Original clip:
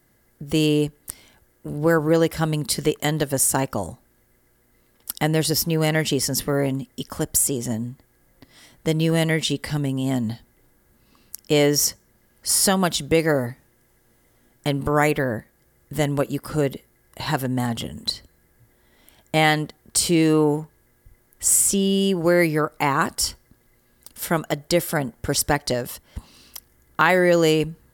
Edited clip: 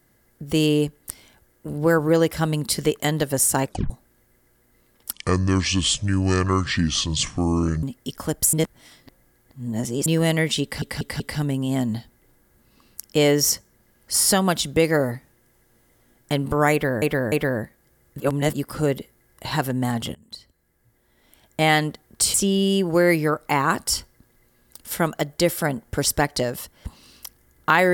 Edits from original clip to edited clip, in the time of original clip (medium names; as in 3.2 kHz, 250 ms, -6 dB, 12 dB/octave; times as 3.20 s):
3.65 s: tape stop 0.25 s
5.13–6.75 s: speed 60%
7.45–8.98 s: reverse
9.55 s: stutter 0.19 s, 4 plays
15.07–15.37 s: loop, 3 plays
15.95–16.28 s: reverse
17.90–19.53 s: fade in, from -20 dB
20.09–21.65 s: delete